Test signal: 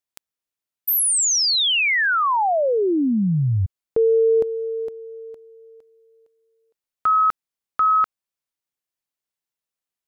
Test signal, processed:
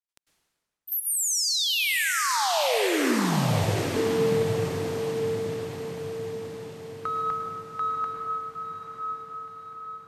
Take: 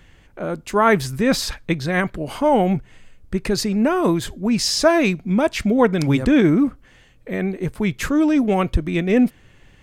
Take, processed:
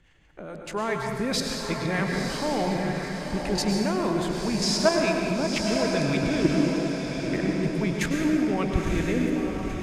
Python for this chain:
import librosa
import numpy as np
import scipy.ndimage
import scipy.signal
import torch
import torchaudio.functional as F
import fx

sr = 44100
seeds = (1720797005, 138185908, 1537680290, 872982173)

p1 = fx.peak_eq(x, sr, hz=2600.0, db=2.0, octaves=2.9)
p2 = 10.0 ** (-13.0 / 20.0) * np.tanh(p1 / 10.0 ** (-13.0 / 20.0))
p3 = p1 + (p2 * 10.0 ** (-6.0 / 20.0))
p4 = fx.harmonic_tremolo(p3, sr, hz=4.8, depth_pct=50, crossover_hz=510.0)
p5 = scipy.signal.sosfilt(scipy.signal.butter(2, 11000.0, 'lowpass', fs=sr, output='sos'), p4)
p6 = fx.level_steps(p5, sr, step_db=11)
p7 = fx.rev_plate(p6, sr, seeds[0], rt60_s=1.8, hf_ratio=0.75, predelay_ms=90, drr_db=2.0)
p8 = fx.dynamic_eq(p7, sr, hz=1400.0, q=4.5, threshold_db=-35.0, ratio=4.0, max_db=-4)
p9 = p8 + fx.echo_diffused(p8, sr, ms=969, feedback_pct=50, wet_db=-5.0, dry=0)
y = p9 * 10.0 ** (-5.0 / 20.0)